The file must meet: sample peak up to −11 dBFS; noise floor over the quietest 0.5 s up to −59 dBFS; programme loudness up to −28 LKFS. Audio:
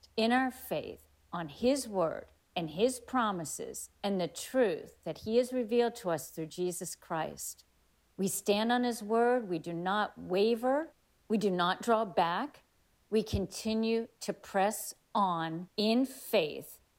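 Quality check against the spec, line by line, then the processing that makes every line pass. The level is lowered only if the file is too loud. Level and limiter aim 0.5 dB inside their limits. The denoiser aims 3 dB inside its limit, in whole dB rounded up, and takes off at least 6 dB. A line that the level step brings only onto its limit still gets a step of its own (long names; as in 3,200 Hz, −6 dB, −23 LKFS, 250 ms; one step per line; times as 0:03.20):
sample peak −16.5 dBFS: in spec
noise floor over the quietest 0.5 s −70 dBFS: in spec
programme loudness −32.5 LKFS: in spec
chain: no processing needed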